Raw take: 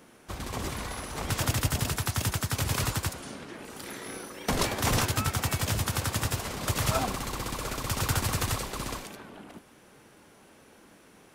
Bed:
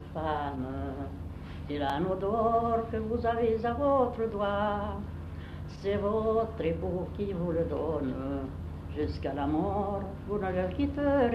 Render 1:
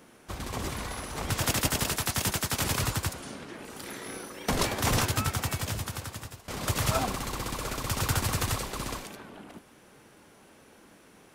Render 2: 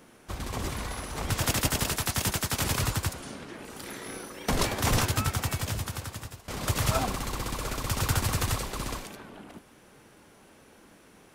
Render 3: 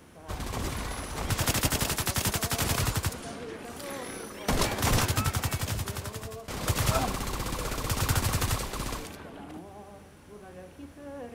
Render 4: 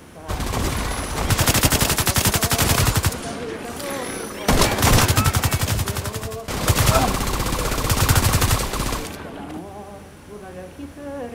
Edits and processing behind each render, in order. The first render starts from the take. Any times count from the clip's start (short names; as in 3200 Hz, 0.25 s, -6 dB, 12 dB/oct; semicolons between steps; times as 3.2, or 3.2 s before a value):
1.43–2.71 spectral limiter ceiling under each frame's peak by 12 dB; 5.19–6.48 fade out, to -21.5 dB
low shelf 65 Hz +5.5 dB
add bed -16 dB
gain +10 dB; limiter -3 dBFS, peak gain reduction 1 dB